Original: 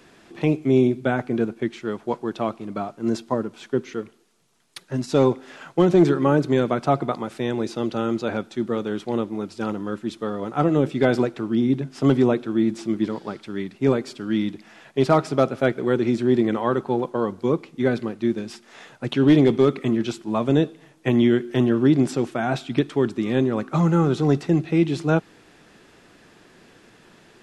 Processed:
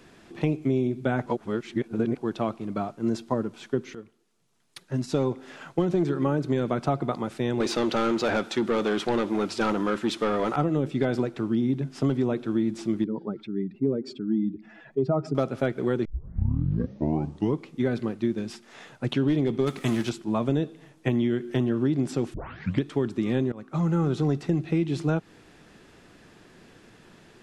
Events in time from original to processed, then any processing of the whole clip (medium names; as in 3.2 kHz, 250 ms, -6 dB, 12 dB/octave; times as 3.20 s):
1.26–2.18 s: reverse
3.95–5.34 s: fade in, from -12 dB
7.60–10.56 s: overdrive pedal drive 20 dB, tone 5.8 kHz, clips at -11.5 dBFS
13.04–15.35 s: spectral contrast enhancement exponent 1.9
16.05 s: tape start 1.61 s
19.66–20.08 s: formants flattened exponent 0.6
22.34 s: tape start 0.48 s
23.52–24.14 s: fade in linear, from -20.5 dB
whole clip: bass shelf 190 Hz +6.5 dB; compression, threshold -18 dBFS; trim -2.5 dB